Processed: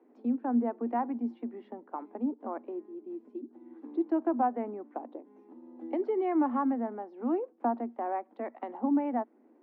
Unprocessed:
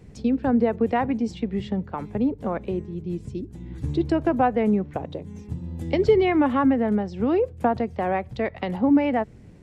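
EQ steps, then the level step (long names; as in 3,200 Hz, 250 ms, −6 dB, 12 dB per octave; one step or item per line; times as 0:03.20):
dynamic equaliser 460 Hz, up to −5 dB, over −36 dBFS, Q 1.7
Chebyshev high-pass with heavy ripple 230 Hz, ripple 6 dB
low-pass filter 1,100 Hz 12 dB per octave
−3.0 dB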